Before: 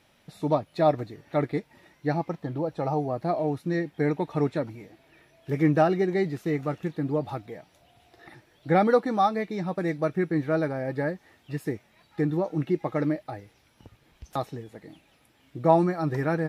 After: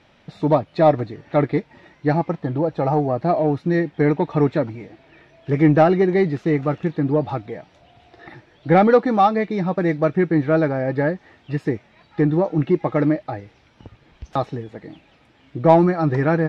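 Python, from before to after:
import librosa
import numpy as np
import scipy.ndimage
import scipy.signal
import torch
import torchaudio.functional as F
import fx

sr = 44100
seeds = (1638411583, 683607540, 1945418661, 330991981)

p1 = fx.air_absorb(x, sr, metres=140.0)
p2 = 10.0 ** (-19.5 / 20.0) * np.tanh(p1 / 10.0 ** (-19.5 / 20.0))
p3 = p1 + (p2 * 10.0 ** (-4.0 / 20.0))
y = p3 * 10.0 ** (4.5 / 20.0)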